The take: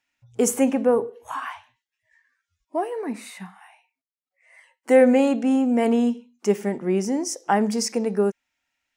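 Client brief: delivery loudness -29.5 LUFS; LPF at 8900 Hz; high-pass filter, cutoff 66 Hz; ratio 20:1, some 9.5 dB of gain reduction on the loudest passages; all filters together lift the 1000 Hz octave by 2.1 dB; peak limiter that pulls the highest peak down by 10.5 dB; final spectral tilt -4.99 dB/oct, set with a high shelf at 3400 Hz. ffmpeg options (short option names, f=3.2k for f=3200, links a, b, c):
-af "highpass=66,lowpass=8.9k,equalizer=f=1k:t=o:g=3.5,highshelf=f=3.4k:g=-8,acompressor=threshold=-19dB:ratio=20,volume=-1.5dB,alimiter=limit=-19.5dB:level=0:latency=1"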